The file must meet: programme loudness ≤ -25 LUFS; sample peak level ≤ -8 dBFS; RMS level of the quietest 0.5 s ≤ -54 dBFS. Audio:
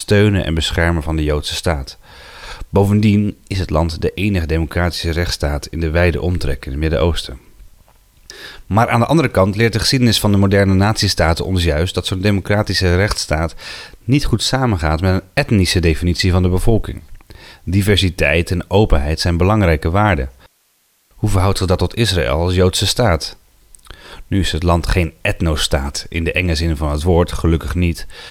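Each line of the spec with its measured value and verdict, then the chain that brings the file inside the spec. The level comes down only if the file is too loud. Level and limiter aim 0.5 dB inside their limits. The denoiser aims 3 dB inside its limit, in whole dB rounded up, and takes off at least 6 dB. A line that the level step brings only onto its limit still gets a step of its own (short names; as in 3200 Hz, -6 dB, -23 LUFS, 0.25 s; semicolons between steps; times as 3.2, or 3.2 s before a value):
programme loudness -16.0 LUFS: fail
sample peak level -1.5 dBFS: fail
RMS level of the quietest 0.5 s -59 dBFS: OK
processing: gain -9.5 dB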